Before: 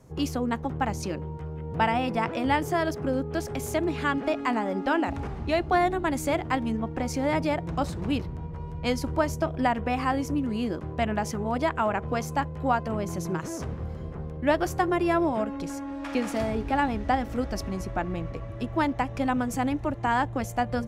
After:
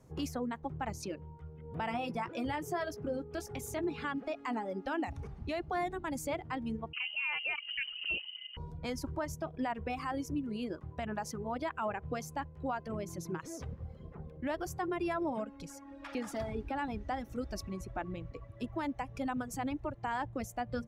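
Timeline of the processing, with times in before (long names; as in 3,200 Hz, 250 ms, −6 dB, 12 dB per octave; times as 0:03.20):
0:01.89–0:04.08: double-tracking delay 17 ms −8.5 dB
0:06.93–0:08.57: voice inversion scrambler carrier 3,000 Hz
whole clip: reverb reduction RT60 2 s; brickwall limiter −20 dBFS; level −6.5 dB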